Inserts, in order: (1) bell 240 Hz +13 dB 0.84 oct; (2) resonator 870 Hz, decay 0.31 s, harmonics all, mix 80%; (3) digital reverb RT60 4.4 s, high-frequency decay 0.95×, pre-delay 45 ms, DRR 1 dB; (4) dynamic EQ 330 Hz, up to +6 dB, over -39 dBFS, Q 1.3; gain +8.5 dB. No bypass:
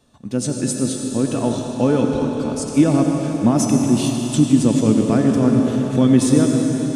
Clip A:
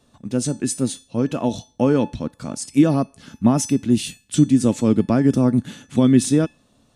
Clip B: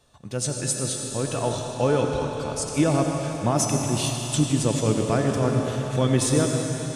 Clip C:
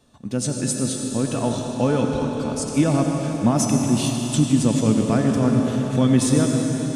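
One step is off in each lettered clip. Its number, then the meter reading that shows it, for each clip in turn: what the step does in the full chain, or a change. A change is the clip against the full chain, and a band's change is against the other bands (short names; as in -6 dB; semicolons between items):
3, momentary loudness spread change +3 LU; 1, 250 Hz band -10.5 dB; 4, loudness change -3.0 LU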